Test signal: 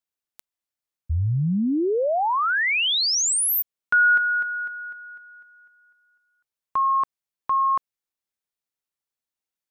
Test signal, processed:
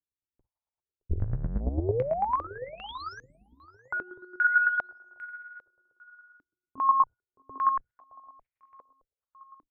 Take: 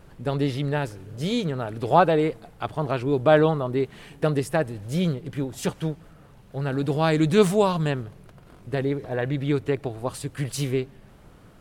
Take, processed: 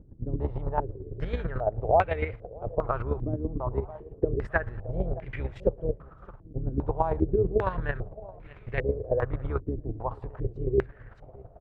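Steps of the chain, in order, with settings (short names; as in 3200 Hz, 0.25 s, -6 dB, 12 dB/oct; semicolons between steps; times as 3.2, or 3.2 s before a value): octaver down 2 oct, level +3 dB; ten-band EQ 125 Hz +7 dB, 250 Hz -11 dB, 500 Hz +3 dB; chopper 9 Hz, depth 65%, duty 20%; compressor 10:1, threshold -23 dBFS; bell 150 Hz -9.5 dB 0.28 oct; feedback echo 0.618 s, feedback 45%, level -20 dB; stepped low-pass 2.5 Hz 290–2200 Hz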